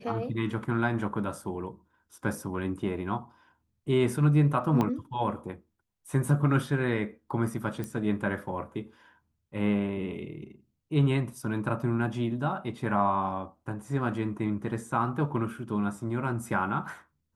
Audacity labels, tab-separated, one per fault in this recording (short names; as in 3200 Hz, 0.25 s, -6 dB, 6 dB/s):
4.810000	4.810000	pop -15 dBFS
7.840000	7.840000	pop -22 dBFS